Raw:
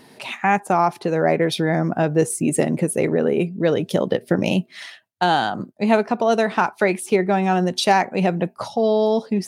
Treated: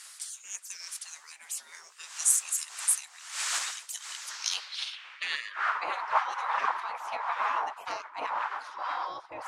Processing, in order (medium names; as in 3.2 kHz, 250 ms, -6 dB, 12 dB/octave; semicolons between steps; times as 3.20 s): wind noise 420 Hz -16 dBFS; tone controls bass +7 dB, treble +7 dB; spectral gate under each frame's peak -25 dB weak; band-pass sweep 7.9 kHz -> 930 Hz, 4.12–6.02 s; trim +7 dB